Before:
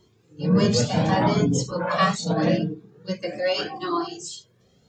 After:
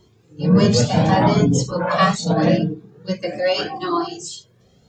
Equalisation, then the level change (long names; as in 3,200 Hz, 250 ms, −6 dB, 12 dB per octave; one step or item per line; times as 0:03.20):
low-shelf EQ 130 Hz +5 dB
parametric band 730 Hz +2.5 dB 0.59 octaves
+3.5 dB